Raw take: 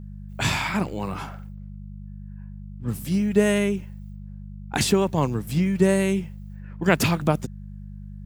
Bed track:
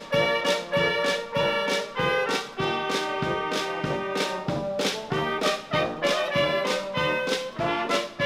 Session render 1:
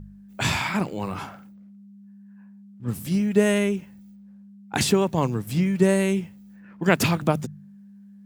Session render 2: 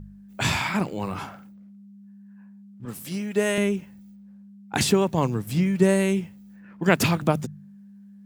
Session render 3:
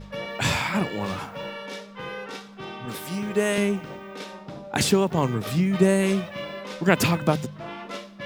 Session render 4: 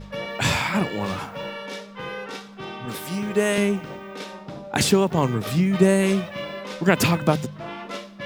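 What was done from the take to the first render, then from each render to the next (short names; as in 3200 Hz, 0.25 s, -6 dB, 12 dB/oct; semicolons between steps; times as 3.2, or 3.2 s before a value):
de-hum 50 Hz, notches 3
2.85–3.58 HPF 440 Hz 6 dB/oct
add bed track -11 dB
gain +2 dB; limiter -3 dBFS, peak gain reduction 2.5 dB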